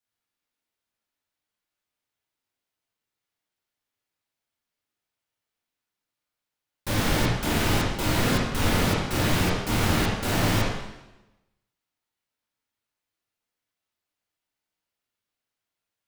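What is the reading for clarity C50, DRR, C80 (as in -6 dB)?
0.0 dB, -6.5 dB, 3.5 dB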